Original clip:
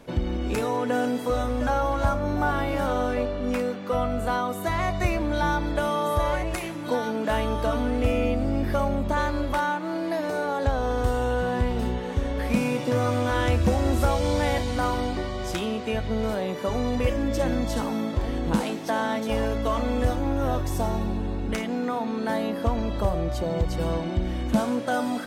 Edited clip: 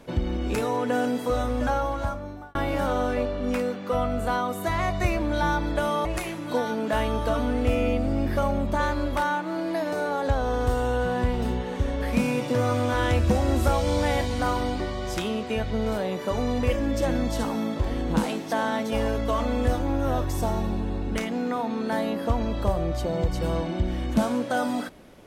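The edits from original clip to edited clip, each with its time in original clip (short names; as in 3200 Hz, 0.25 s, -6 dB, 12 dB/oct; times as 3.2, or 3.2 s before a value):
1.65–2.55 fade out
6.05–6.42 cut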